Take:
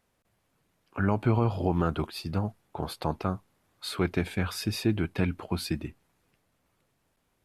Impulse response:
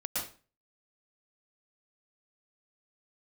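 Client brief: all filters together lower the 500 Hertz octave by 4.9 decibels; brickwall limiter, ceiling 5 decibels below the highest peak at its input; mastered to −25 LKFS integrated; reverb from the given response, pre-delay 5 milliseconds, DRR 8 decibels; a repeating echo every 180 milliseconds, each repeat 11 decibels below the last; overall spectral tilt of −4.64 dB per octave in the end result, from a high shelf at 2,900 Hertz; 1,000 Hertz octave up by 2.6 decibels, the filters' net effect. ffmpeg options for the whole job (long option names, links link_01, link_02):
-filter_complex "[0:a]equalizer=frequency=500:width_type=o:gain=-8.5,equalizer=frequency=1000:width_type=o:gain=5,highshelf=frequency=2900:gain=6.5,alimiter=limit=-17.5dB:level=0:latency=1,aecho=1:1:180|360|540:0.282|0.0789|0.0221,asplit=2[link_01][link_02];[1:a]atrim=start_sample=2205,adelay=5[link_03];[link_02][link_03]afir=irnorm=-1:irlink=0,volume=-12.5dB[link_04];[link_01][link_04]amix=inputs=2:normalize=0,volume=6dB"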